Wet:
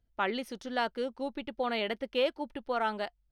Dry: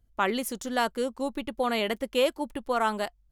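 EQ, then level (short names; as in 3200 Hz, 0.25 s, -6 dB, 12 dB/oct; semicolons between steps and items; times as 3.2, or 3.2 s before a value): polynomial smoothing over 15 samples; low shelf 210 Hz -5.5 dB; notch 1100 Hz, Q 7.2; -3.5 dB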